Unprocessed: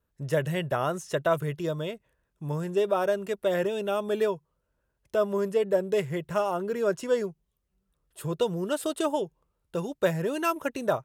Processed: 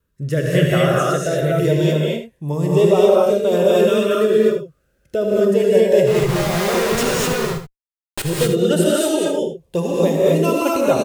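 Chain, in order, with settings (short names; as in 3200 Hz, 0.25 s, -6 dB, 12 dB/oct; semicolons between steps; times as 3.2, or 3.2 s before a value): in parallel at -0.5 dB: limiter -19.5 dBFS, peak gain reduction 7 dB; on the sum: rotary speaker horn 1 Hz; LFO notch saw up 0.27 Hz 740–2000 Hz; 6.07–8.22 Schmitt trigger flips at -44.5 dBFS; on a send: echo 78 ms -9.5 dB; on the sum: non-linear reverb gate 0.27 s rising, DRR -4 dB; gain +4.5 dB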